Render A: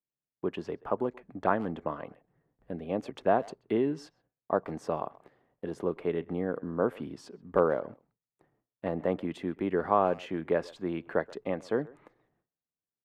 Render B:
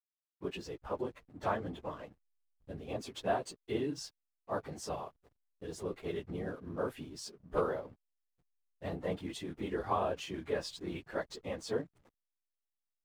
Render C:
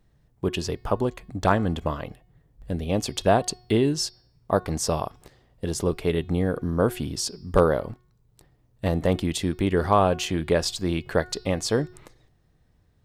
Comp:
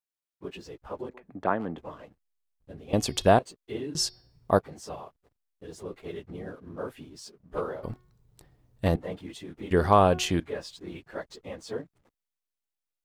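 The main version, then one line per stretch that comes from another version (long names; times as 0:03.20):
B
0:01.09–0:01.78: punch in from A
0:02.93–0:03.39: punch in from C
0:03.95–0:04.59: punch in from C
0:07.83–0:08.96: punch in from C
0:09.71–0:10.40: punch in from C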